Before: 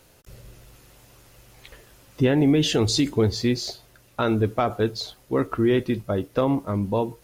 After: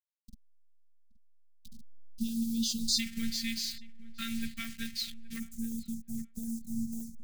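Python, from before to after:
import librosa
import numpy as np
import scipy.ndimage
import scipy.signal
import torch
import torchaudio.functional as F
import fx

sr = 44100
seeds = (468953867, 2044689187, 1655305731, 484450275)

y = fx.delta_hold(x, sr, step_db=-34.0)
y = fx.ellip_bandstop(y, sr, low_hz=170.0, high_hz=fx.steps((0.0, 4300.0), (2.98, 1900.0), (5.38, 6400.0)), order=3, stop_db=40)
y = fx.robotise(y, sr, hz=228.0)
y = fx.echo_filtered(y, sr, ms=823, feedback_pct=20, hz=2500.0, wet_db=-19)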